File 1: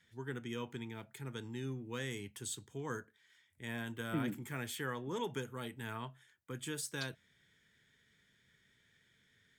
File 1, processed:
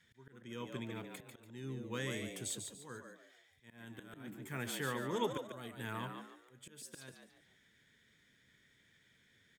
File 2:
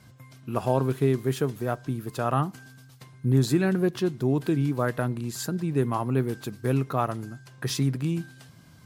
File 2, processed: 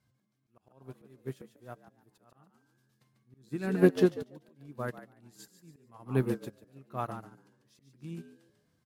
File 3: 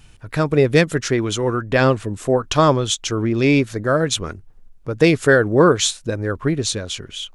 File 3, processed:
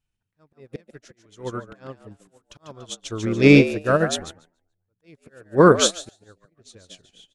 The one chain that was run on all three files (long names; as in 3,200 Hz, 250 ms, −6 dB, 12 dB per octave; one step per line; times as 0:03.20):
volume swells 489 ms
on a send: echo with shifted repeats 144 ms, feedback 34%, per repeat +83 Hz, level −6 dB
on the sum: expander for the loud parts 2.5 to 1, over −37 dBFS
level +4 dB